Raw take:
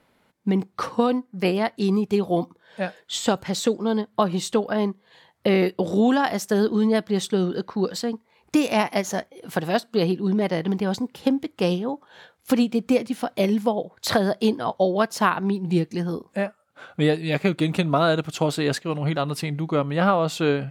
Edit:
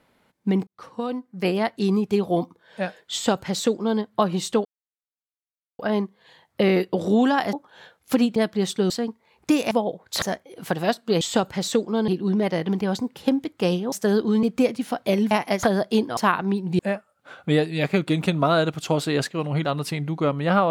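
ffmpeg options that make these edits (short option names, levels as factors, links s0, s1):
-filter_complex "[0:a]asplit=16[s0][s1][s2][s3][s4][s5][s6][s7][s8][s9][s10][s11][s12][s13][s14][s15];[s0]atrim=end=0.67,asetpts=PTS-STARTPTS,afade=t=out:st=0.666:d=0.004:c=hsin[s16];[s1]atrim=start=0.67:end=4.65,asetpts=PTS-STARTPTS,afade=t=in:d=0.92,afade=t=out:st=3.976:d=0.004:c=hsin,apad=pad_dur=1.14[s17];[s2]atrim=start=4.65:end=6.392,asetpts=PTS-STARTPTS,afade=t=in:d=0.004:c=hsin[s18];[s3]atrim=start=11.908:end=12.742[s19];[s4]atrim=start=6.898:end=7.442[s20];[s5]atrim=start=7.948:end=8.762[s21];[s6]atrim=start=13.618:end=14.132[s22];[s7]atrim=start=9.078:end=10.072[s23];[s8]atrim=start=3.128:end=4.002[s24];[s9]atrim=start=10.068:end=11.912[s25];[s10]atrim=start=6.388:end=6.902[s26];[s11]atrim=start=12.738:end=13.622[s27];[s12]atrim=start=8.758:end=9.082[s28];[s13]atrim=start=14.128:end=14.672[s29];[s14]atrim=start=15.148:end=15.772[s30];[s15]atrim=start=16.298[s31];[s16][s17][s18]concat=n=3:v=0:a=1[s32];[s32][s19]acrossfade=d=0.004:c1=hsin:c2=hsin[s33];[s33][s20]acrossfade=d=0.004:c1=hsin:c2=hsin[s34];[s34][s21]acrossfade=d=0.004:c1=hsin:c2=hsin[s35];[s35][s22]acrossfade=d=0.004:c1=hsin:c2=hsin[s36];[s36][s23]acrossfade=d=0.004:c1=hsin:c2=hsin[s37];[s37][s24]acrossfade=d=0.004:c1=hsin:c2=hsin[s38];[s38][s25]acrossfade=d=0.004:c1=hsin:c2=hsin[s39];[s39][s26]acrossfade=d=0.004:c1=hsin:c2=hsin[s40];[s40][s27]acrossfade=d=0.004:c1=hsin:c2=hsin[s41];[s41][s28]acrossfade=d=0.004:c1=hsin:c2=hsin[s42];[s42][s29]acrossfade=d=0.004:c1=hsin:c2=hsin[s43];[s43][s30]acrossfade=d=0.004:c1=hsin:c2=hsin[s44];[s44][s31]acrossfade=d=0.004:c1=hsin:c2=hsin"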